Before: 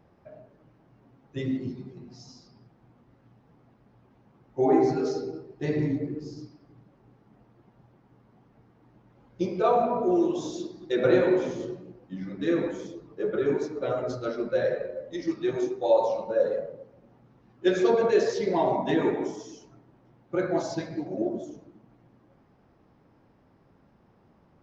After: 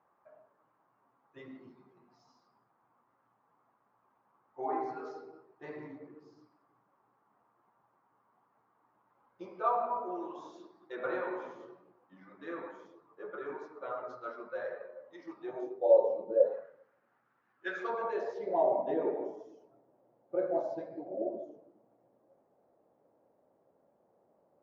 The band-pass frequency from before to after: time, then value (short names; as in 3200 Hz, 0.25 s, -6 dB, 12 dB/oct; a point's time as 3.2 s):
band-pass, Q 2.8
15.2 s 1100 Hz
16.31 s 350 Hz
16.67 s 1500 Hz
17.68 s 1500 Hz
18.68 s 580 Hz